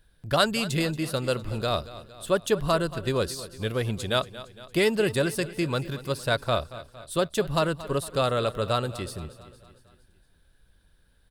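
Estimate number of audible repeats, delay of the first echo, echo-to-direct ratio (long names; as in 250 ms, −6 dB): 4, 230 ms, −14.5 dB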